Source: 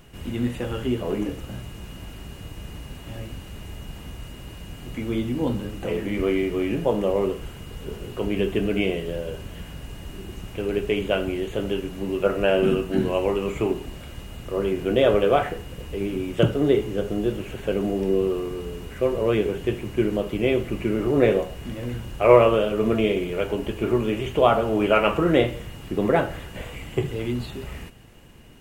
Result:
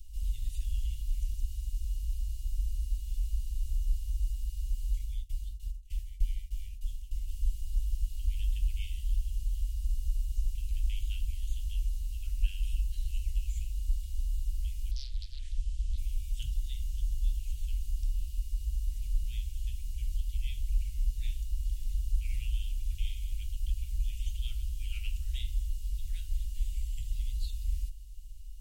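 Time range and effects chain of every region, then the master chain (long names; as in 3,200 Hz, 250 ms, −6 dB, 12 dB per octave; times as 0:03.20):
0:04.99–0:07.28: shaped tremolo saw down 3.3 Hz, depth 75% + downward expander −31 dBFS
0:14.91–0:15.98: low-pass filter 8,800 Hz 24 dB per octave + downward compressor 2.5 to 1, threshold −24 dBFS + highs frequency-modulated by the lows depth 0.83 ms
whole clip: inverse Chebyshev band-stop filter 180–1,100 Hz, stop band 70 dB; tilt shelving filter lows +8 dB, about 720 Hz; level +4.5 dB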